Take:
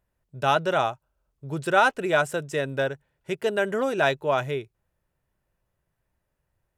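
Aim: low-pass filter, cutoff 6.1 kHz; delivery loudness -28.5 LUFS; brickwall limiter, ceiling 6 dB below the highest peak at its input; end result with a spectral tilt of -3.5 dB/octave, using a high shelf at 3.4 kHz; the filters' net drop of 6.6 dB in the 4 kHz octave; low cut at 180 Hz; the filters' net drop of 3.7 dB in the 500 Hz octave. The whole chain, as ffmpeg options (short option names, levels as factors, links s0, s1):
-af "highpass=180,lowpass=6100,equalizer=f=500:t=o:g=-4.5,highshelf=f=3400:g=-3.5,equalizer=f=4000:t=o:g=-6,volume=1.12,alimiter=limit=0.2:level=0:latency=1"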